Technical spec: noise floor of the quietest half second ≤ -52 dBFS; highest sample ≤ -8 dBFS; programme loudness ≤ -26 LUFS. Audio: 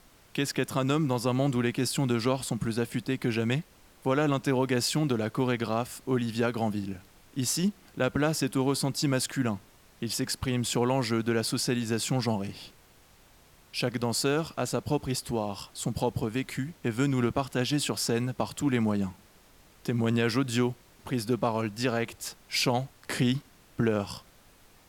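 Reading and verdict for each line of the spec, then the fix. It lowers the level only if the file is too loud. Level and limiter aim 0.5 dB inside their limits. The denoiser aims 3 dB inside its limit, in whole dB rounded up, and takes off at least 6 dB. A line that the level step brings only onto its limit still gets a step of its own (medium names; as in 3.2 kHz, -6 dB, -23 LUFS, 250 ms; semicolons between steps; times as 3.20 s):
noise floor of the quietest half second -58 dBFS: pass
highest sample -12.0 dBFS: pass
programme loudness -29.0 LUFS: pass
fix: none needed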